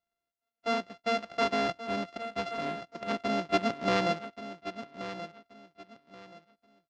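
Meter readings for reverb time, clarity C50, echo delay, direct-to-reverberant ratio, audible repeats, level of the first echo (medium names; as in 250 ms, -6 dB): no reverb, no reverb, 1129 ms, no reverb, 2, -12.0 dB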